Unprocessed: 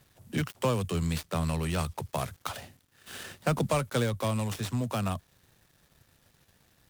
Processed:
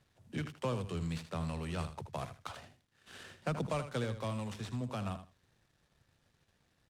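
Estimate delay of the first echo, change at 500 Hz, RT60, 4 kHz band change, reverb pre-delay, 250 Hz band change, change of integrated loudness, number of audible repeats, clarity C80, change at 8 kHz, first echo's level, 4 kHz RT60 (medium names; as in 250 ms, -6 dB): 79 ms, -8.0 dB, no reverb, -9.0 dB, no reverb, -7.5 dB, -8.0 dB, 2, no reverb, -13.0 dB, -11.0 dB, no reverb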